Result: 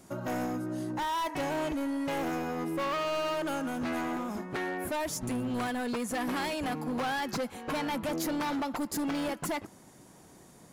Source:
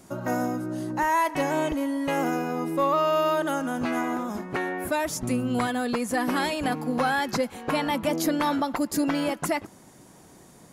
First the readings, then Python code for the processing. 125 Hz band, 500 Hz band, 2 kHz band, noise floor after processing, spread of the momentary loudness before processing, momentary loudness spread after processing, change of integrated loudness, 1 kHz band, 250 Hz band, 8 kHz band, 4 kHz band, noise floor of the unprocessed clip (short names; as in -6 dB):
-5.5 dB, -7.0 dB, -6.5 dB, -55 dBFS, 6 LU, 4 LU, -6.5 dB, -7.0 dB, -6.0 dB, -5.0 dB, -4.5 dB, -52 dBFS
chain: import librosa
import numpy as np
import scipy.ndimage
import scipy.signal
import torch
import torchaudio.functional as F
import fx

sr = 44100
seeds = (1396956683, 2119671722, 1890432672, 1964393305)

y = np.clip(x, -10.0 ** (-25.5 / 20.0), 10.0 ** (-25.5 / 20.0))
y = y * librosa.db_to_amplitude(-3.5)